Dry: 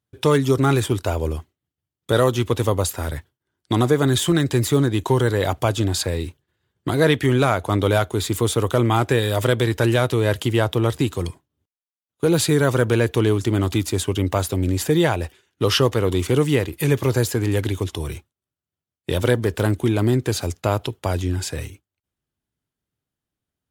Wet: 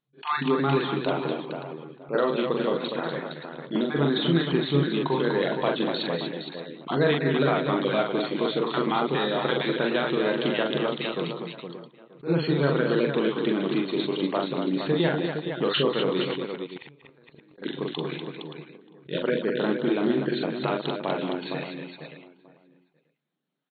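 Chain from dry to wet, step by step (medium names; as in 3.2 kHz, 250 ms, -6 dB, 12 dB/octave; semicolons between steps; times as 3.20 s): random holes in the spectrogram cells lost 20%; echo from a far wall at 160 m, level -26 dB; compression 2:1, threshold -28 dBFS, peak gain reduction 9 dB; FFT band-pass 130–4400 Hz; 16.30–17.58 s: inverted gate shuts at -25 dBFS, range -32 dB; on a send: multi-tap echo 42/191/244/464/576 ms -3.5/-12.5/-6.5/-7.5/-12.5 dB; on the sum: attacks held to a fixed rise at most 280 dB/s; trim +1.5 dB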